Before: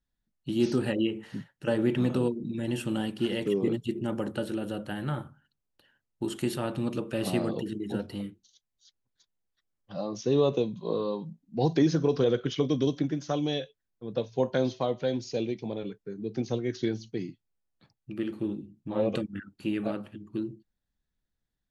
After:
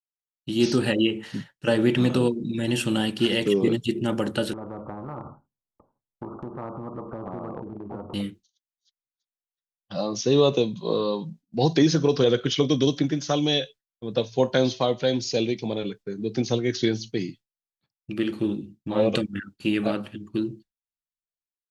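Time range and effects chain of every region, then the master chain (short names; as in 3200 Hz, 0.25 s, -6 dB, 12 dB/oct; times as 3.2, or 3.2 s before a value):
4.53–8.14 steep low-pass 1200 Hz 96 dB/oct + compressor 2:1, threshold -42 dBFS + spectral compressor 2:1
whole clip: expander -45 dBFS; AGC gain up to 12 dB; bell 4600 Hz +7.5 dB 2.3 oct; gain -6 dB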